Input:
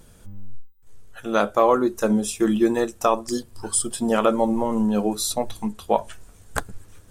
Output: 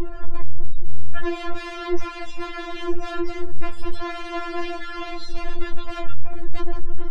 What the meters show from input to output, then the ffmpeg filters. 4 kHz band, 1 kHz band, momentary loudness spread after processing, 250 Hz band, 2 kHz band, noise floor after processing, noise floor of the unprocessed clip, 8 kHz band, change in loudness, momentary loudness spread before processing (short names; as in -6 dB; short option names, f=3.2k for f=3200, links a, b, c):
-3.0 dB, -8.0 dB, 9 LU, -8.5 dB, +0.5 dB, -33 dBFS, -51 dBFS, -22.5 dB, -9.0 dB, 12 LU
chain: -filter_complex "[0:a]aeval=exprs='val(0)+0.5*0.106*sgn(val(0))':c=same,aemphasis=mode=reproduction:type=75fm,aeval=exprs='(mod(10*val(0)+1,2)-1)/10':c=same,afftdn=nr=24:nf=-37,acrossover=split=3700[a][b];[b]acompressor=threshold=-36dB:ratio=4:attack=1:release=60[c];[a][c]amix=inputs=2:normalize=0,bandreject=f=140.6:t=h:w=4,bandreject=f=281.2:t=h:w=4,bandreject=f=421.8:t=h:w=4,alimiter=limit=-21.5dB:level=0:latency=1:release=12,lowpass=4.8k,lowshelf=f=240:g=10,afftfilt=real='re*4*eq(mod(b,16),0)':imag='im*4*eq(mod(b,16),0)':win_size=2048:overlap=0.75,volume=-3dB"